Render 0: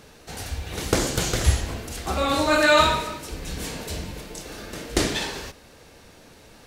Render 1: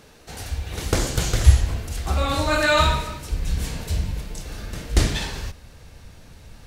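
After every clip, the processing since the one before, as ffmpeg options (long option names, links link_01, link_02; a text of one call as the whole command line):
ffmpeg -i in.wav -af "asubboost=boost=5.5:cutoff=140,volume=-1dB" out.wav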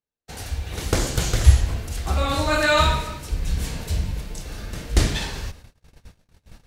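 ffmpeg -i in.wav -af "agate=range=-45dB:threshold=-41dB:ratio=16:detection=peak" out.wav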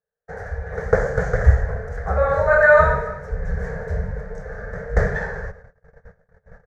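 ffmpeg -i in.wav -af "firequalizer=gain_entry='entry(110,0);entry(180,4);entry(310,-24);entry(440,14);entry(1000,0);entry(1700,12);entry(2700,-26);entry(4000,-24);entry(6200,-16);entry(9300,-30)':delay=0.05:min_phase=1,volume=-1dB" out.wav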